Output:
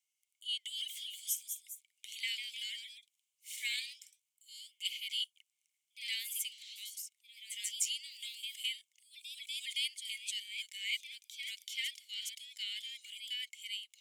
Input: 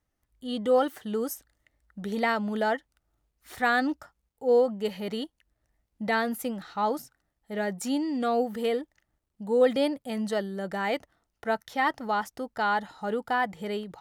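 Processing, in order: rippled Chebyshev high-pass 2100 Hz, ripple 9 dB; echoes that change speed 0.274 s, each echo +1 st, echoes 2, each echo -6 dB; gain +7 dB

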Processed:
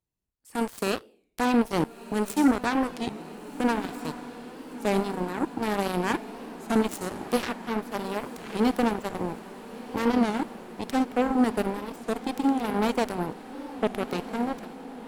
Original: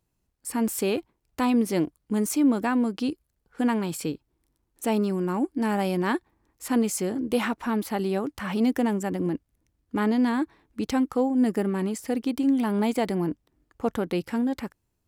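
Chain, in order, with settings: Schroeder reverb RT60 0.66 s, DRR 11 dB; added harmonics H 3 -27 dB, 7 -16 dB, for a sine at -11.5 dBFS; on a send: diffused feedback echo 1.398 s, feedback 66%, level -13.5 dB; on the sum: record warp 33 1/3 rpm, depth 160 cents

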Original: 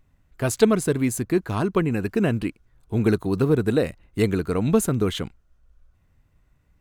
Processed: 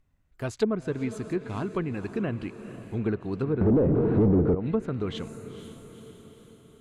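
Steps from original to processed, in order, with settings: on a send: diffused feedback echo 0.479 s, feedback 56%, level -12.5 dB; 3.61–4.55 on the sum: sample leveller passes 5; treble ducked by the level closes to 500 Hz, closed at -10 dBFS; gain -8 dB

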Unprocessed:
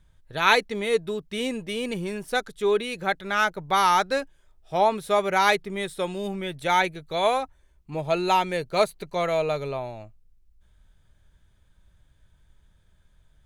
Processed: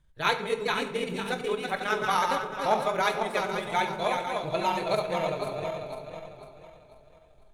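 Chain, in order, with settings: regenerating reverse delay 0.443 s, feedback 62%, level -4 dB; transient shaper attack +1 dB, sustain -3 dB; on a send: narrowing echo 0.152 s, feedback 75%, band-pass 1000 Hz, level -16.5 dB; on the sum: granular stretch 0.56×, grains 46 ms; shoebox room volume 130 m³, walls mixed, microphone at 0.39 m; gain -5 dB

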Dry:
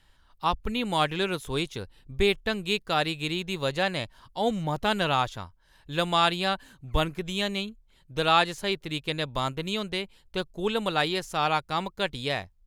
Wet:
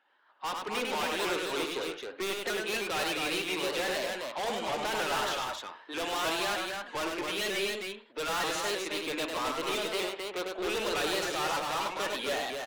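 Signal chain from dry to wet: bin magnitudes rounded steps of 15 dB; Bessel high-pass 510 Hz, order 8; low-pass opened by the level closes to 1900 Hz, open at -21.5 dBFS; AGC gain up to 11.5 dB; soft clip -31.5 dBFS, distortion -1 dB; loudspeakers at several distances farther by 34 m -4 dB, 91 m -4 dB; on a send at -10.5 dB: reverb, pre-delay 56 ms; on the sum: shaped vibrato saw up 3.2 Hz, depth 100 cents

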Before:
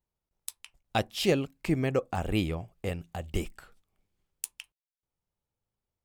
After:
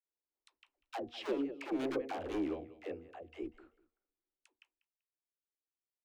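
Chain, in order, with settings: Doppler pass-by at 1.9, 9 m/s, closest 4 m; LPF 2500 Hz 12 dB/oct; on a send: feedback echo 0.193 s, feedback 21%, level -19.5 dB; on the sum: hard clip -33.5 dBFS, distortion -5 dB; resonant low shelf 220 Hz -11.5 dB, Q 3; de-hum 239 Hz, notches 3; dispersion lows, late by 0.1 s, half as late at 390 Hz; gain -1.5 dB

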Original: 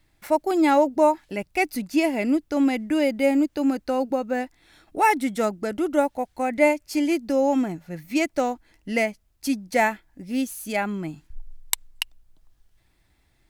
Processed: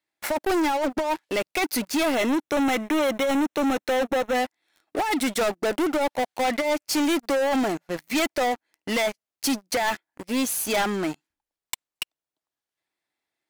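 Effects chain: HPF 380 Hz 12 dB/oct; high shelf 11000 Hz -3.5 dB; negative-ratio compressor -23 dBFS, ratio -0.5; sample leveller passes 5; soft clip -13.5 dBFS, distortion -14 dB; 2.15–4.35 Butterworth band-stop 4700 Hz, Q 5.9; gain -6.5 dB

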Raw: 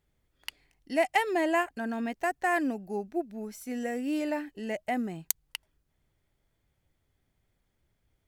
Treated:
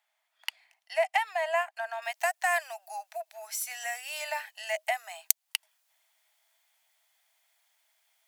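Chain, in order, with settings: high shelf 3300 Hz -2 dB, from 2.02 s +11 dB; compressor 2:1, threshold -33 dBFS, peak gain reduction 11.5 dB; rippled Chebyshev high-pass 630 Hz, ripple 3 dB; gain +7 dB

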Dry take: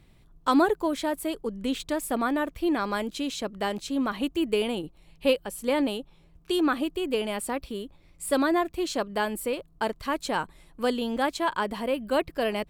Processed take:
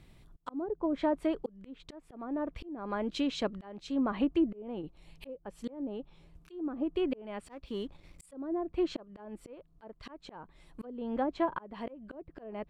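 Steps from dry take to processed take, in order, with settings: treble ducked by the level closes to 510 Hz, closed at -21 dBFS; 7.46–8.26 sample leveller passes 1; auto swell 0.536 s

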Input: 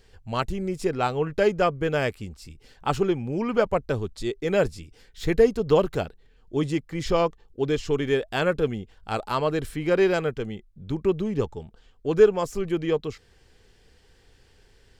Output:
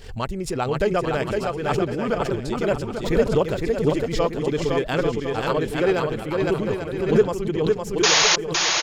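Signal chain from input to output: tempo 1.7×; painted sound noise, 8.03–8.36, 510–6900 Hz -17 dBFS; on a send: bouncing-ball echo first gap 0.51 s, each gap 0.65×, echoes 5; on the sum: backwards sustainer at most 88 dB/s

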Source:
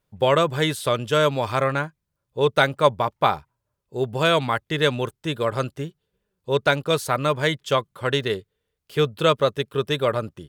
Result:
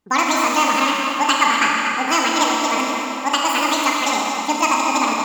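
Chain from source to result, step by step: tape echo 0.472 s, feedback 62%, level -6 dB, low-pass 2400 Hz; speed mistake 7.5 ips tape played at 15 ips; Schroeder reverb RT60 2.5 s, combs from 27 ms, DRR -1 dB

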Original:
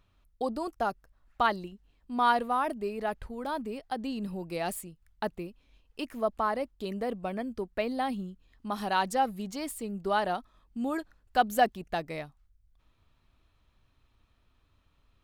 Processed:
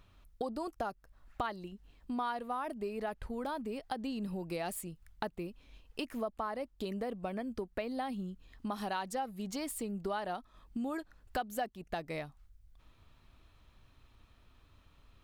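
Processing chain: compressor 4:1, threshold -42 dBFS, peak gain reduction 20 dB; gain +5.5 dB

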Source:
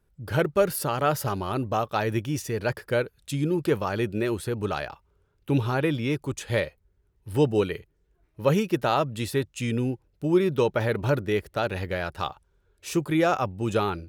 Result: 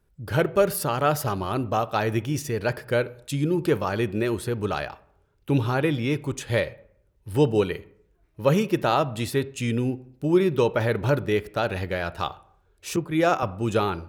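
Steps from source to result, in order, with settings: reverb RT60 0.65 s, pre-delay 23 ms, DRR 16.5 dB; 12.96–13.43 three-band expander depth 100%; gain +1.5 dB

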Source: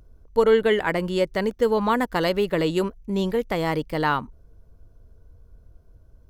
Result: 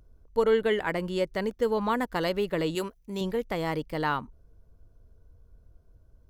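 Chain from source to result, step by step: 2.75–3.21 tilt +2 dB/oct; gain -5.5 dB

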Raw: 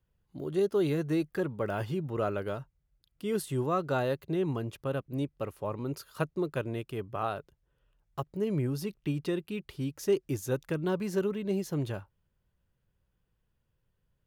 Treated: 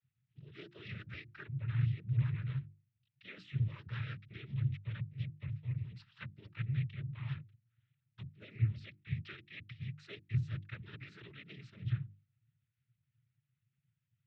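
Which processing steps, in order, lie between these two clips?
trilling pitch shifter -1 st, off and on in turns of 70 ms; inverse Chebyshev band-stop 150–1100 Hz, stop band 40 dB; tilt -4 dB/oct; noise vocoder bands 12; air absorption 380 m; notches 50/100/150/200/250/300/350 Hz; gain +9 dB

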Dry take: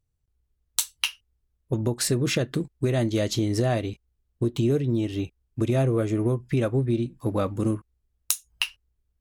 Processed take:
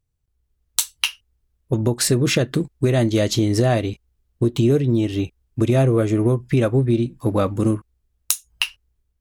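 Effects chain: AGC gain up to 4.5 dB; gain +1.5 dB

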